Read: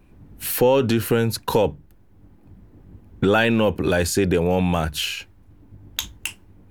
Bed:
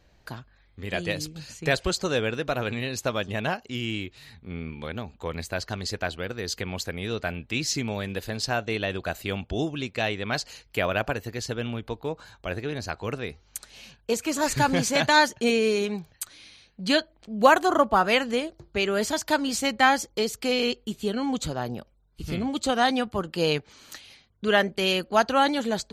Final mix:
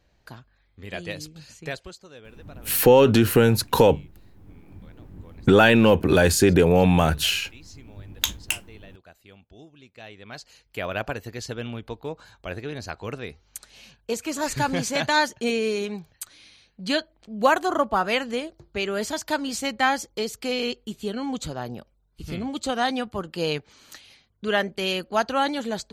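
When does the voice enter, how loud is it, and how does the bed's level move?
2.25 s, +2.5 dB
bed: 1.59 s -4.5 dB
2.04 s -20.5 dB
9.75 s -20.5 dB
11.01 s -2 dB

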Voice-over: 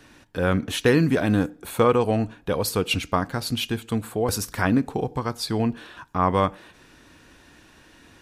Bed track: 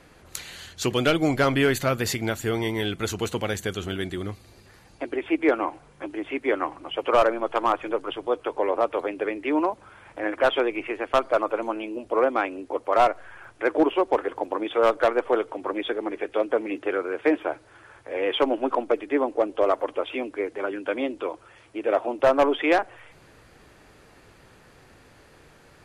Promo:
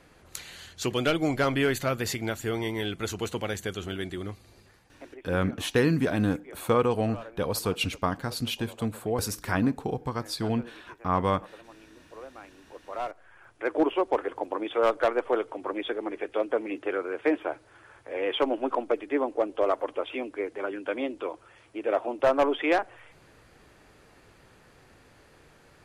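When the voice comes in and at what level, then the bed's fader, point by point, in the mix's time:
4.90 s, -4.5 dB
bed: 4.62 s -4 dB
5.35 s -23 dB
12.39 s -23 dB
13.82 s -3.5 dB

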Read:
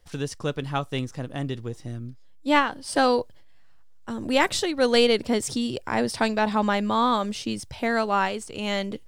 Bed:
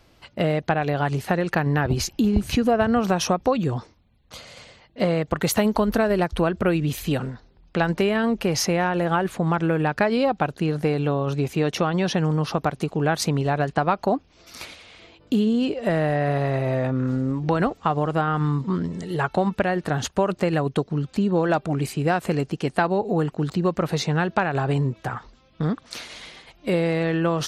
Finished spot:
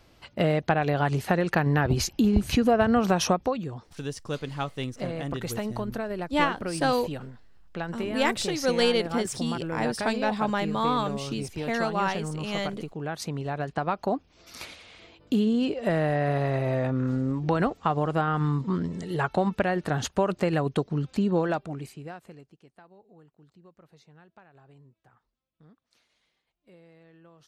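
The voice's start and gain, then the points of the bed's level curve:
3.85 s, -4.0 dB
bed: 3.32 s -1.5 dB
3.70 s -11.5 dB
13.03 s -11.5 dB
14.49 s -3 dB
21.37 s -3 dB
22.73 s -32.5 dB

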